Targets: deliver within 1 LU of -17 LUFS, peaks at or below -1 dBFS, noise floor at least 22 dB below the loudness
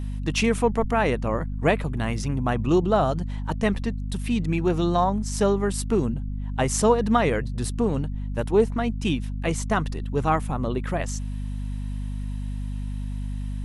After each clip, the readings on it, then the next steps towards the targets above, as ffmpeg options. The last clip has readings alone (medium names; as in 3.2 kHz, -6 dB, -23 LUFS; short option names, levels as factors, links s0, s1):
hum 50 Hz; highest harmonic 250 Hz; hum level -27 dBFS; loudness -25.0 LUFS; peak level -7.0 dBFS; loudness target -17.0 LUFS
-> -af "bandreject=f=50:t=h:w=4,bandreject=f=100:t=h:w=4,bandreject=f=150:t=h:w=4,bandreject=f=200:t=h:w=4,bandreject=f=250:t=h:w=4"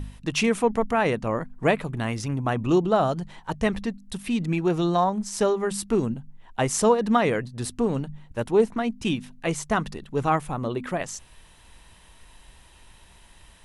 hum not found; loudness -25.0 LUFS; peak level -8.0 dBFS; loudness target -17.0 LUFS
-> -af "volume=2.51,alimiter=limit=0.891:level=0:latency=1"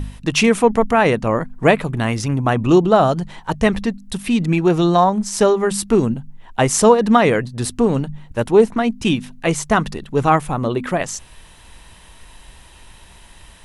loudness -17.5 LUFS; peak level -1.0 dBFS; noise floor -45 dBFS